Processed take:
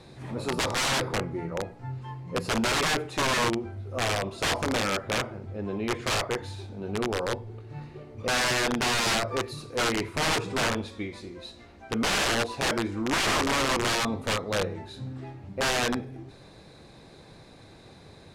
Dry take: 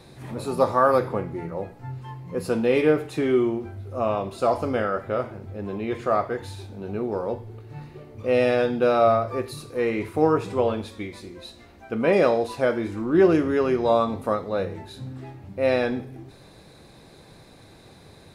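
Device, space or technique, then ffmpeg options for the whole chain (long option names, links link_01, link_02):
overflowing digital effects unit: -af "aeval=exprs='(mod(8.91*val(0)+1,2)-1)/8.91':channel_layout=same,lowpass=8300,volume=-1dB"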